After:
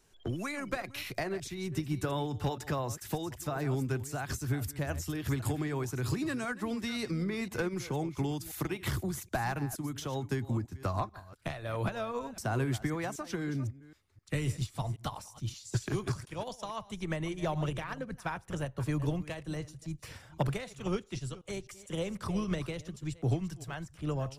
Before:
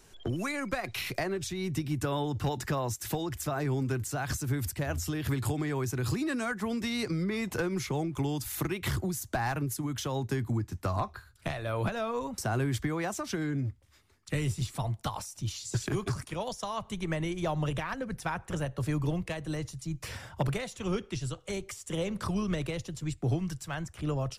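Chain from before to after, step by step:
delay that plays each chunk backwards 258 ms, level −13 dB
expander for the loud parts 1.5 to 1, over −44 dBFS

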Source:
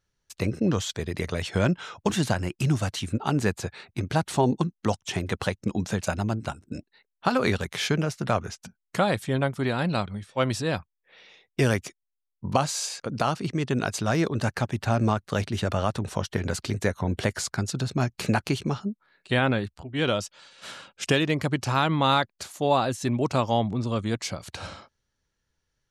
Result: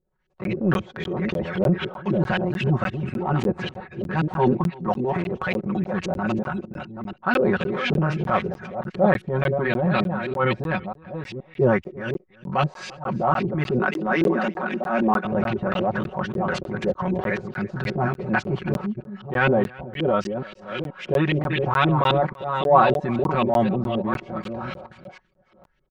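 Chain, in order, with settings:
delay that plays each chunk backwards 475 ms, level −8 dB
0:13.79–0:15.25: Butterworth high-pass 170 Hz 96 dB per octave
auto-filter low-pass saw up 3.8 Hz 320–3,100 Hz
comb filter 5.4 ms, depth 99%
transient designer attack −9 dB, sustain +4 dB
single-tap delay 332 ms −22.5 dB
regular buffer underruns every 0.30 s, samples 512, zero, from 0:00.44

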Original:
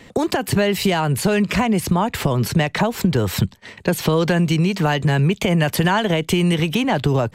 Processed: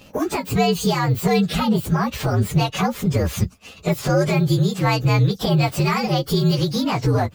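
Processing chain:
partials spread apart or drawn together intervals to 118%
level +1.5 dB

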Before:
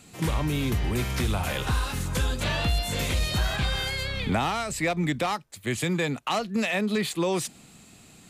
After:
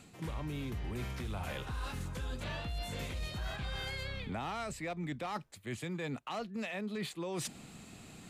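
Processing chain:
high-shelf EQ 4,100 Hz −7 dB
reversed playback
downward compressor 6 to 1, threshold −38 dBFS, peak gain reduction 16 dB
reversed playback
level +1 dB

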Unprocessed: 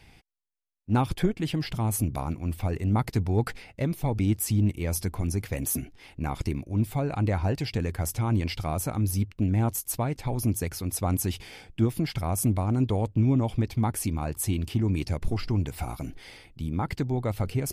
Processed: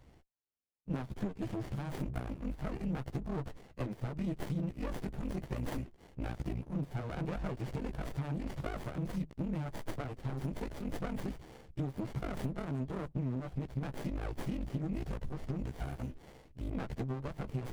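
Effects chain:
every overlapping window played backwards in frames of 31 ms
dynamic equaliser 670 Hz, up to +7 dB, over −49 dBFS, Q 2.8
downward compressor 12 to 1, threshold −30 dBFS, peak gain reduction 12 dB
high-shelf EQ 11,000 Hz +2.5 dB
windowed peak hold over 33 samples
level −1 dB

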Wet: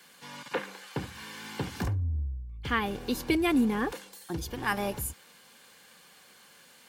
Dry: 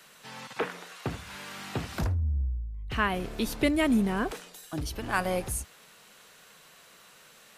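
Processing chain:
notch comb filter 590 Hz
speed change +10%

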